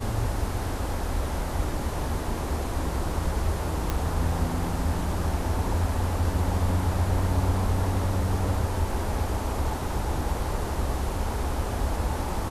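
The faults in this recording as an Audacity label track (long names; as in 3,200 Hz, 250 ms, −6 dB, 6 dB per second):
3.900000	3.900000	click −12 dBFS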